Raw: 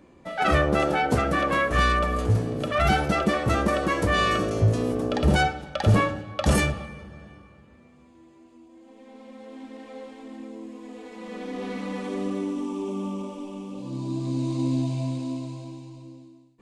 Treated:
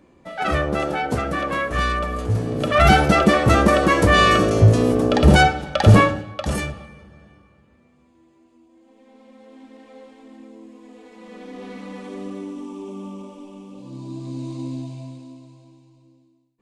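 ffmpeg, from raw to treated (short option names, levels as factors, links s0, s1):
-af "volume=2.51,afade=t=in:st=2.29:d=0.53:silence=0.375837,afade=t=out:st=6.01:d=0.46:silence=0.266073,afade=t=out:st=14.48:d=0.87:silence=0.421697"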